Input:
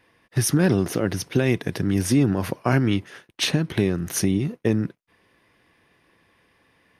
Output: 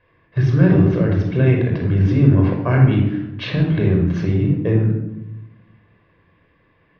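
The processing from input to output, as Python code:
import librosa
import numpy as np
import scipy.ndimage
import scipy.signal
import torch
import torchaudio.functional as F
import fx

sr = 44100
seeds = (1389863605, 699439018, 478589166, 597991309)

y = scipy.signal.sosfilt(scipy.signal.bessel(6, 2500.0, 'lowpass', norm='mag', fs=sr, output='sos'), x)
y = fx.low_shelf(y, sr, hz=71.0, db=6.5)
y = fx.room_shoebox(y, sr, seeds[0], volume_m3=3300.0, walls='furnished', distance_m=5.4)
y = y * 10.0 ** (-2.5 / 20.0)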